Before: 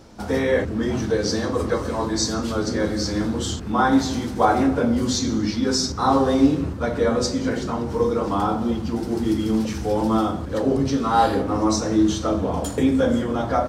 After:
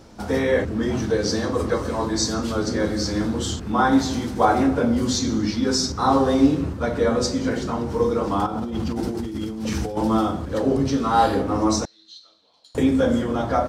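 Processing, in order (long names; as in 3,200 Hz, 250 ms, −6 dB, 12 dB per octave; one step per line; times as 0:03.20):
0:08.46–0:09.97: compressor whose output falls as the input rises −27 dBFS, ratio −1
0:11.85–0:12.75: resonant band-pass 4,100 Hz, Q 15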